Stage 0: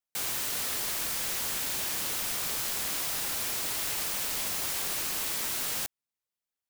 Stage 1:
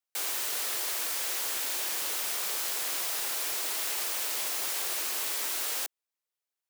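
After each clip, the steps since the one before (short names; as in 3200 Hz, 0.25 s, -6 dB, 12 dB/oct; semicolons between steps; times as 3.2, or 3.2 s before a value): HPF 330 Hz 24 dB/oct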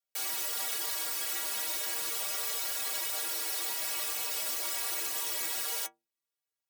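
metallic resonator 70 Hz, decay 0.43 s, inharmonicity 0.03; gain +7.5 dB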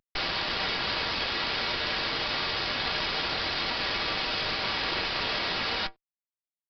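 CVSD 64 kbps; added harmonics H 8 -9 dB, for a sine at -23.5 dBFS; downsampling 11025 Hz; gain +7 dB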